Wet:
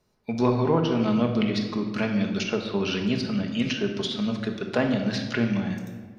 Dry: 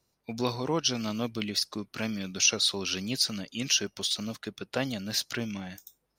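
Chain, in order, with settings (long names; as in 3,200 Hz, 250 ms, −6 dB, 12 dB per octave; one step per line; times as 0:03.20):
treble cut that deepens with the level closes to 1,500 Hz, closed at −23 dBFS
high-shelf EQ 4,000 Hz −11.5 dB
rectangular room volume 1,500 cubic metres, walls mixed, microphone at 1.4 metres
level +6 dB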